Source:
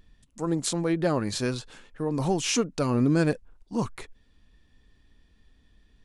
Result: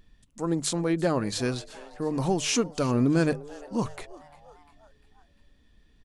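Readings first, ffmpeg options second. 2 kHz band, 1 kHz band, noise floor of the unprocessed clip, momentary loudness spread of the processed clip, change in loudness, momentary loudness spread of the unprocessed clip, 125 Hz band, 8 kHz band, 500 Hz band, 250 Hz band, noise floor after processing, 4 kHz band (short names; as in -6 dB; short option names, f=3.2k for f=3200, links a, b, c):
0.0 dB, 0.0 dB, -63 dBFS, 12 LU, 0.0 dB, 12 LU, -1.0 dB, 0.0 dB, 0.0 dB, 0.0 dB, -62 dBFS, 0.0 dB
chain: -filter_complex "[0:a]bandreject=f=50:t=h:w=6,bandreject=f=100:t=h:w=6,bandreject=f=150:t=h:w=6,asplit=2[a][b];[b]asplit=4[c][d][e][f];[c]adelay=349,afreqshift=140,volume=-21dB[g];[d]adelay=698,afreqshift=280,volume=-26dB[h];[e]adelay=1047,afreqshift=420,volume=-31.1dB[i];[f]adelay=1396,afreqshift=560,volume=-36.1dB[j];[g][h][i][j]amix=inputs=4:normalize=0[k];[a][k]amix=inputs=2:normalize=0"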